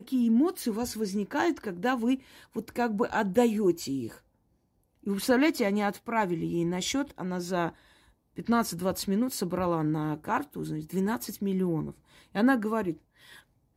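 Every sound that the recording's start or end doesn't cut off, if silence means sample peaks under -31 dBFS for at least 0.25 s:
2.56–4.07
5.07–7.69
8.38–11.89
12.36–12.91

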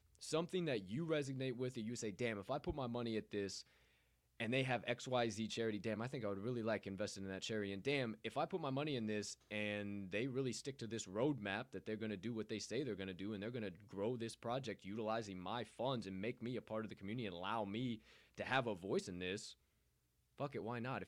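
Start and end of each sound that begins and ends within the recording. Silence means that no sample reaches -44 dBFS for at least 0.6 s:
4.4–19.48

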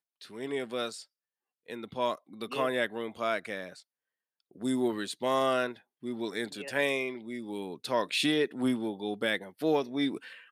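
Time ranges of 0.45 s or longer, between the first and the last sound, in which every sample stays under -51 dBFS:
1.05–1.68
3.82–4.51

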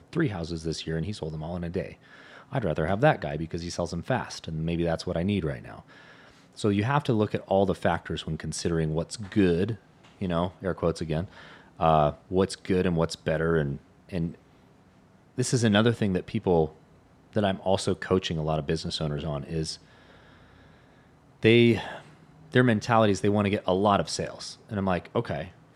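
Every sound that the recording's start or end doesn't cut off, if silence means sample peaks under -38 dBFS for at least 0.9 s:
15.38–19.75

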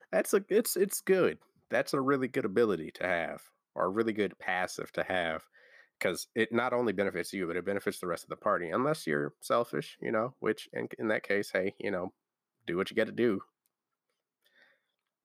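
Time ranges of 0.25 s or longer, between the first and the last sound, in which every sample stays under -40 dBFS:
1.33–1.71
3.37–3.76
5.38–6.01
12.08–12.68

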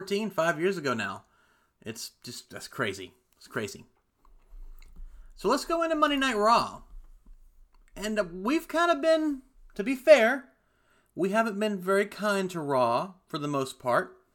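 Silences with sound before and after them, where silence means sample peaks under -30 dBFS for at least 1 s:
3.73–5.44
6.69–7.98

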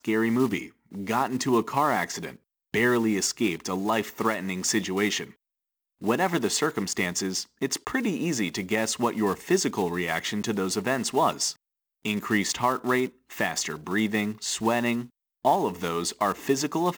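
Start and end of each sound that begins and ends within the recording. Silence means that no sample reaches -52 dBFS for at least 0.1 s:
0.86–2.37
2.74–5.34
6.01–7.46
7.61–11.56
12.05–13.15
13.3–15.09

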